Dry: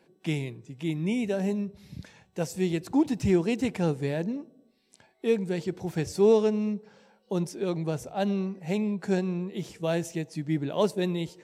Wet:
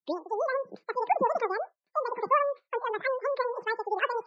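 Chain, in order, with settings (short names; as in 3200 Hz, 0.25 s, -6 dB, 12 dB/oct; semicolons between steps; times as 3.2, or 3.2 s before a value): tape start at the beginning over 0.40 s; de-hum 181.4 Hz, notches 7; expander -45 dBFS; wide varispeed 2.68×; spectral gate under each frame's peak -25 dB strong; speaker cabinet 110–4100 Hz, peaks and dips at 180 Hz +5 dB, 260 Hz -9 dB, 1300 Hz -5 dB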